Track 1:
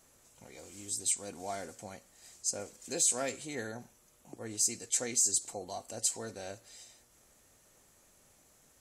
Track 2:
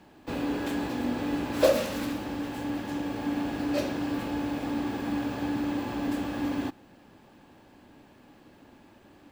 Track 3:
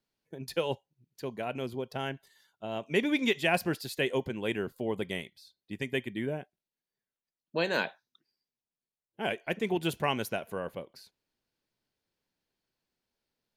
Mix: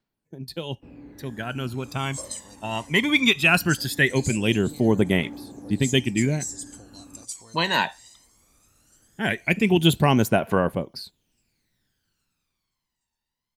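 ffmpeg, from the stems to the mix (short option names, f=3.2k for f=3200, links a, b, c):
-filter_complex "[0:a]acrossover=split=450|3400[a][b][c];[a]acompressor=threshold=-52dB:ratio=4[d];[b]acompressor=threshold=-53dB:ratio=4[e];[c]acompressor=threshold=-34dB:ratio=4[f];[d][e][f]amix=inputs=3:normalize=0,adelay=1250,volume=-1dB,asplit=2[g][h];[h]volume=-23dB[i];[1:a]lowpass=f=1.1k:p=1,adelay=550,volume=-17dB[j];[2:a]equalizer=f=490:t=o:w=0.76:g=-6,dynaudnorm=f=130:g=21:m=12dB,volume=-2.5dB[k];[i]aecho=0:1:817|1634|2451|3268|4085|4902|5719|6536:1|0.55|0.303|0.166|0.0915|0.0503|0.0277|0.0152[l];[g][j][k][l]amix=inputs=4:normalize=0,aphaser=in_gain=1:out_gain=1:delay=1.1:decay=0.66:speed=0.19:type=triangular"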